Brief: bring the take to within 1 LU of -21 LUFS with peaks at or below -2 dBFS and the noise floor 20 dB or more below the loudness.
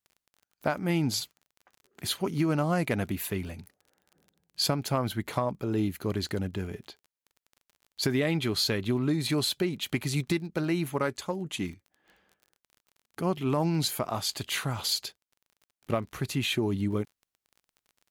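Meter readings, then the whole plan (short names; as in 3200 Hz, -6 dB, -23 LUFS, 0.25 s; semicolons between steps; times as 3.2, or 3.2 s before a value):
ticks 28/s; loudness -29.5 LUFS; peak -12.0 dBFS; loudness target -21.0 LUFS
-> de-click; gain +8.5 dB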